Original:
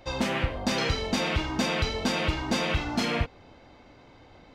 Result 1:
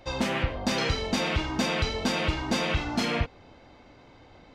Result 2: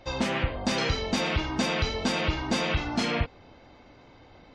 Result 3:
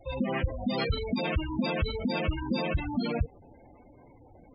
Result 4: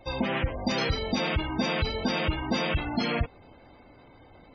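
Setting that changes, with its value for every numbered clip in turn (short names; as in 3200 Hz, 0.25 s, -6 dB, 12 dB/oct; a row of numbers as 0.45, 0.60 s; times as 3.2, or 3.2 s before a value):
spectral gate, under each frame's peak: -55, -40, -10, -20 dB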